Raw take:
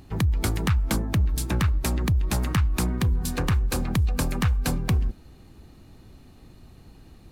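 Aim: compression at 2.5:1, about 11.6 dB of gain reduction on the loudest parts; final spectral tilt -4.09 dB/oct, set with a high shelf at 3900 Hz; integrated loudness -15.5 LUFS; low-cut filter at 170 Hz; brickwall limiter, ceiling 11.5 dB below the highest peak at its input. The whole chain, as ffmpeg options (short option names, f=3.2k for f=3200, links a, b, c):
-af "highpass=170,highshelf=f=3.9k:g=8,acompressor=threshold=-42dB:ratio=2.5,volume=29.5dB,alimiter=limit=-1dB:level=0:latency=1"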